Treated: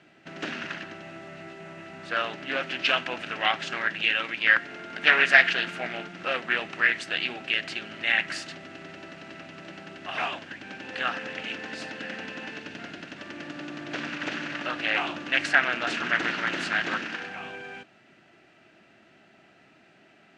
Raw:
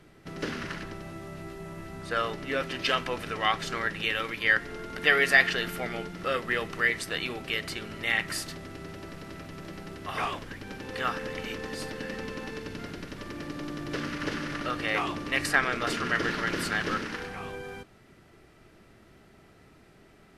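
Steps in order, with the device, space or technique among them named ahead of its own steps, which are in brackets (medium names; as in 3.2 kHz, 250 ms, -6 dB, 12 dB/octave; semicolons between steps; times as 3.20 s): full-range speaker at full volume (loudspeaker Doppler distortion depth 0.33 ms; cabinet simulation 200–7200 Hz, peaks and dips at 450 Hz -8 dB, 680 Hz +5 dB, 1.1 kHz -5 dB, 1.6 kHz +5 dB, 2.7 kHz +8 dB, 5.3 kHz -3 dB)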